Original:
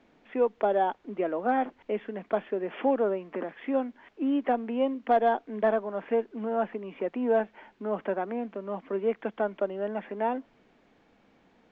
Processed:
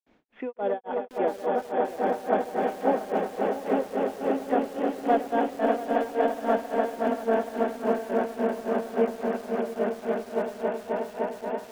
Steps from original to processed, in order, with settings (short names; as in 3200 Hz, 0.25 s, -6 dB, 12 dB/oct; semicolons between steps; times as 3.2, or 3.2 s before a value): swelling echo 0.105 s, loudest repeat 8, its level -6 dB; grains 0.256 s, grains 3.6/s, pitch spread up and down by 0 st; lo-fi delay 0.684 s, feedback 35%, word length 6-bit, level -13 dB